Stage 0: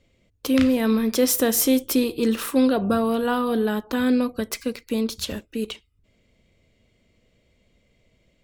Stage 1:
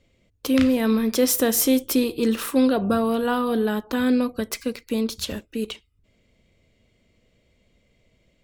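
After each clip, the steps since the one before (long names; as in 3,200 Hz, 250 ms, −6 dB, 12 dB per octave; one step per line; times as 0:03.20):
no processing that can be heard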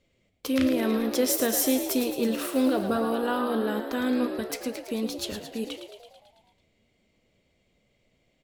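low-shelf EQ 130 Hz −5.5 dB
flanger 0.99 Hz, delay 4.6 ms, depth 9.7 ms, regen +81%
echo with shifted repeats 110 ms, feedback 63%, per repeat +64 Hz, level −9 dB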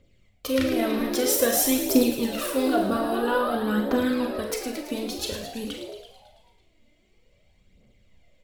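low-shelf EQ 92 Hz +8 dB
phase shifter 0.51 Hz, delay 3.5 ms, feedback 59%
four-comb reverb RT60 0.36 s, combs from 30 ms, DRR 4.5 dB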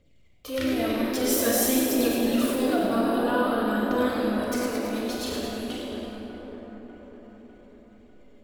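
transient designer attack −6 dB, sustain +4 dB
echo with a time of its own for lows and highs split 1,900 Hz, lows 598 ms, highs 95 ms, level −7.5 dB
rectangular room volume 180 cubic metres, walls hard, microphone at 0.38 metres
level −3.5 dB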